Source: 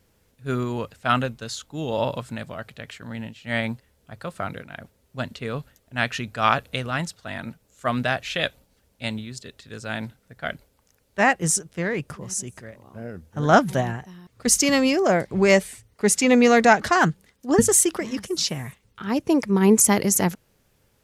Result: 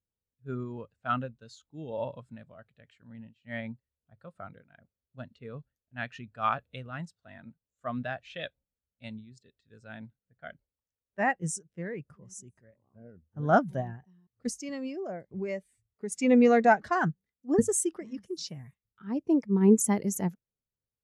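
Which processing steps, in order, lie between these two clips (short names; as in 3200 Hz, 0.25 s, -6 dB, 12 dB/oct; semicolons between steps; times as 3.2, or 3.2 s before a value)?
14.5–16.12 compressor 2:1, threshold -28 dBFS, peak gain reduction 9.5 dB; spectral expander 1.5:1; gain -7.5 dB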